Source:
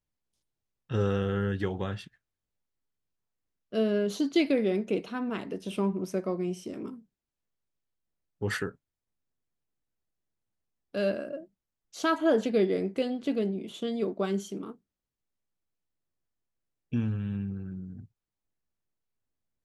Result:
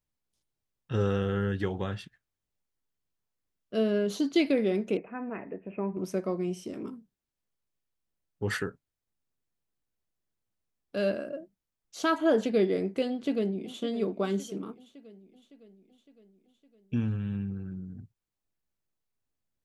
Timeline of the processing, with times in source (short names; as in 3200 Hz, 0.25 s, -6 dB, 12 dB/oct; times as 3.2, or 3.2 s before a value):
4.97–5.97 rippled Chebyshev low-pass 2600 Hz, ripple 6 dB
13.09–13.81 echo throw 0.56 s, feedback 60%, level -13.5 dB